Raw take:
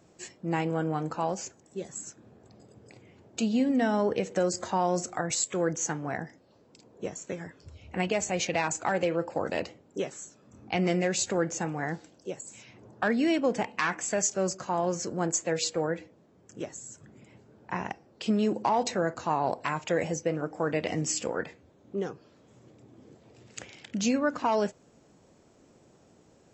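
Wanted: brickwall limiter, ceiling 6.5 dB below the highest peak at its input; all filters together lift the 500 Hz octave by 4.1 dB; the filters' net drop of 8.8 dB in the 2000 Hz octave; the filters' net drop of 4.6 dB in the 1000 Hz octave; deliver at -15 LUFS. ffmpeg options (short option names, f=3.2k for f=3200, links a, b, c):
-af "equalizer=f=500:t=o:g=7.5,equalizer=f=1k:t=o:g=-8.5,equalizer=f=2k:t=o:g=-9,volume=15dB,alimiter=limit=-3.5dB:level=0:latency=1"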